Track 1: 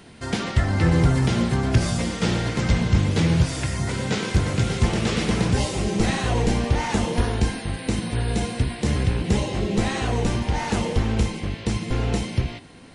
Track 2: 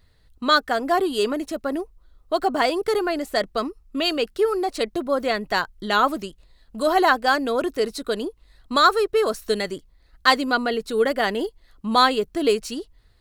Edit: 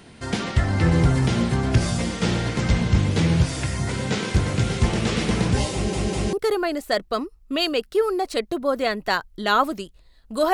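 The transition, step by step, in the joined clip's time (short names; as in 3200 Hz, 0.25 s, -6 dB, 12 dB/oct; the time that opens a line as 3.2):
track 1
5.73 stutter in place 0.20 s, 3 plays
6.33 switch to track 2 from 2.77 s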